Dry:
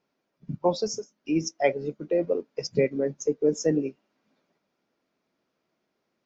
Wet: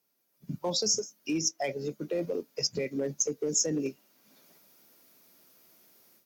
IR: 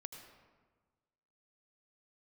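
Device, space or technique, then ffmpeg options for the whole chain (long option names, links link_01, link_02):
FM broadcast chain: -filter_complex "[0:a]highpass=49,dynaudnorm=framelen=280:gausssize=3:maxgain=16.5dB,acrossover=split=200|3300[link_01][link_02][link_03];[link_01]acompressor=threshold=-30dB:ratio=4[link_04];[link_02]acompressor=threshold=-18dB:ratio=4[link_05];[link_03]acompressor=threshold=-32dB:ratio=4[link_06];[link_04][link_05][link_06]amix=inputs=3:normalize=0,aemphasis=mode=production:type=50fm,alimiter=limit=-15dB:level=0:latency=1:release=21,asoftclip=type=hard:threshold=-16dB,lowpass=frequency=15000:width=0.5412,lowpass=frequency=15000:width=1.3066,aemphasis=mode=production:type=50fm,volume=-7.5dB"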